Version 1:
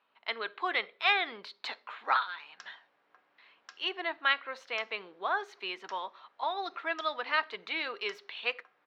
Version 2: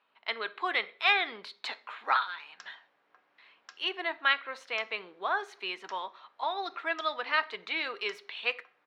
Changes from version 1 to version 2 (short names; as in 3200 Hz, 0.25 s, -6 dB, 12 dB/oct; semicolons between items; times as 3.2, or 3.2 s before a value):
speech: send +10.0 dB; master: add bell 9700 Hz +8 dB 0.45 oct